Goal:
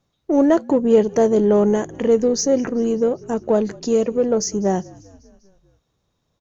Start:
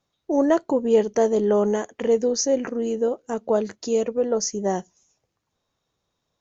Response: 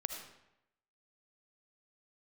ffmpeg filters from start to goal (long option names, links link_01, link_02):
-filter_complex "[0:a]lowshelf=frequency=320:gain=8.5,asplit=2[link_01][link_02];[link_02]asoftclip=type=tanh:threshold=-22.5dB,volume=-11dB[link_03];[link_01][link_03]amix=inputs=2:normalize=0,asplit=6[link_04][link_05][link_06][link_07][link_08][link_09];[link_05]adelay=197,afreqshift=-49,volume=-23.5dB[link_10];[link_06]adelay=394,afreqshift=-98,volume=-27.5dB[link_11];[link_07]adelay=591,afreqshift=-147,volume=-31.5dB[link_12];[link_08]adelay=788,afreqshift=-196,volume=-35.5dB[link_13];[link_09]adelay=985,afreqshift=-245,volume=-39.6dB[link_14];[link_04][link_10][link_11][link_12][link_13][link_14]amix=inputs=6:normalize=0"